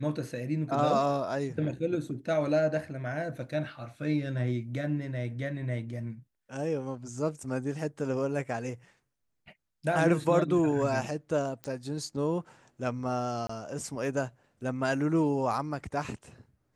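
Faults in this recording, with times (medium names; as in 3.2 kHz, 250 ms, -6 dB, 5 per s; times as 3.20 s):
11.64 s: pop -23 dBFS
13.47–13.49 s: dropout 24 ms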